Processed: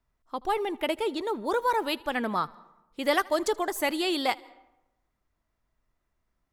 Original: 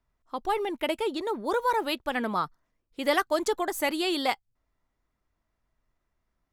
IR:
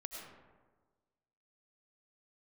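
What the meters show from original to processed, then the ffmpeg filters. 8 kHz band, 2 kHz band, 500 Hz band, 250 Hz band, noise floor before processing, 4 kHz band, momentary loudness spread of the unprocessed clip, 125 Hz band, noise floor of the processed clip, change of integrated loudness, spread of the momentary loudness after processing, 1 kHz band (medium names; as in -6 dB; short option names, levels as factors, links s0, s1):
0.0 dB, 0.0 dB, 0.0 dB, 0.0 dB, -80 dBFS, 0.0 dB, 8 LU, 0.0 dB, -79 dBFS, 0.0 dB, 8 LU, 0.0 dB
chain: -filter_complex "[0:a]asplit=2[s0][s1];[1:a]atrim=start_sample=2205,asetrate=66150,aresample=44100,adelay=79[s2];[s1][s2]afir=irnorm=-1:irlink=0,volume=0.158[s3];[s0][s3]amix=inputs=2:normalize=0"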